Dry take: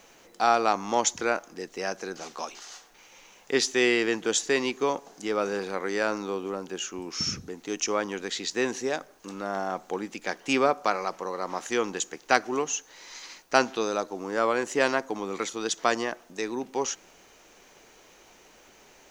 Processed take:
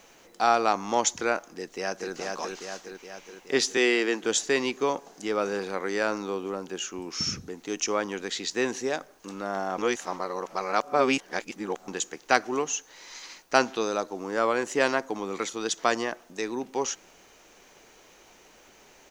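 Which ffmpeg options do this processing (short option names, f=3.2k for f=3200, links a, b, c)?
-filter_complex "[0:a]asplit=2[a][b];[b]afade=t=in:st=1.58:d=0.01,afade=t=out:st=2.13:d=0.01,aecho=0:1:420|840|1260|1680|2100|2520|2940|3360|3780:0.707946|0.424767|0.25486|0.152916|0.0917498|0.0550499|0.0330299|0.019818|0.0118908[c];[a][c]amix=inputs=2:normalize=0,asettb=1/sr,asplit=3[d][e][f];[d]atrim=end=3.774[g];[e]atrim=start=3.77:end=4.23,asetpts=PTS-STARTPTS,afade=t=in:d=0.004:c=qsin,afade=t=out:st=0.456:d=0.004:c=qsin,highpass=f=220:w=0.5412,highpass=f=220:w=1.3066[h];[f]atrim=start=4.226[i];[g][h]acrossfade=d=0.004:c1=hsin:c2=qsin[j];[j][i]acrossfade=d=0.004:c1=qsin:c2=hsin,asplit=3[k][l][m];[k]atrim=end=9.782[n];[l]atrim=start=9.778:end=11.882,asetpts=PTS-STARTPTS,areverse[o];[m]atrim=start=11.878[p];[n][o]acrossfade=d=0.004:c1=hsin:c2=hsin[q];[q][p]acrossfade=d=0.004:c1=hsin:c2=hsin"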